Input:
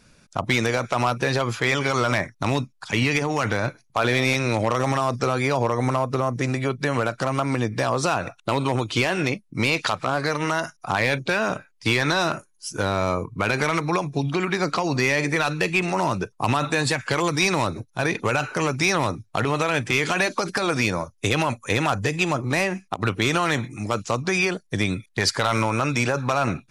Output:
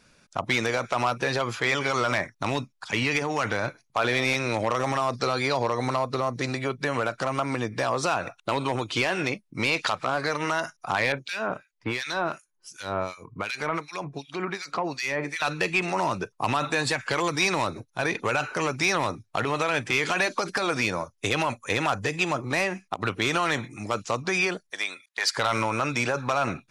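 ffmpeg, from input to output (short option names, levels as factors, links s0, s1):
-filter_complex "[0:a]asettb=1/sr,asplit=3[s0][s1][s2];[s0]atrim=end=5.134[s3];[s1]atrim=start=5.13:end=6.59,asetpts=PTS-STARTPTS,afade=t=in:d=0.004:c=qsin,afade=t=out:st=1.456:d=0.004:c=qsin,equalizer=f=4200:w=4.3:g=12[s4];[s2]atrim=start=6.586[s5];[s3][s4]acrossfade=d=0.004:c1=hsin:c2=qsin[s6];[s6][s5]acrossfade=d=0.004:c1=qsin:c2=hsin,asettb=1/sr,asplit=3[s7][s8][s9];[s7]atrim=end=11.124[s10];[s8]atrim=start=11.12:end=15.42,asetpts=PTS-STARTPTS,afade=t=in:d=0.004:c=qsin,afade=t=out:st=4.296:d=0.004:c=qsin,acrossover=split=2000[s11][s12];[s11]aeval=exprs='val(0)*(1-1/2+1/2*cos(2*PI*2.7*n/s))':c=same[s13];[s12]aeval=exprs='val(0)*(1-1/2-1/2*cos(2*PI*2.7*n/s))':c=same[s14];[s13][s14]amix=inputs=2:normalize=0[s15];[s9]atrim=start=15.416[s16];[s10][s15]acrossfade=d=0.004:c1=hsin:c2=qsin[s17];[s17][s16]acrossfade=d=0.004:c1=qsin:c2=hsin,asettb=1/sr,asplit=3[s18][s19][s20];[s18]atrim=end=24.704[s21];[s19]atrim=start=24.7:end=25.37,asetpts=PTS-STARTPTS,afade=t=in:d=0.004:c=qsin,afade=t=out:st=0.666:d=0.004:c=qsin,highpass=820[s22];[s20]atrim=start=25.366[s23];[s21][s22]acrossfade=d=0.004:c1=hsin:c2=qsin[s24];[s24][s23]acrossfade=d=0.004:c1=qsin:c2=hsin,highshelf=f=7700:g=-5.5,acontrast=67,lowshelf=f=260:g=-8,volume=0.422"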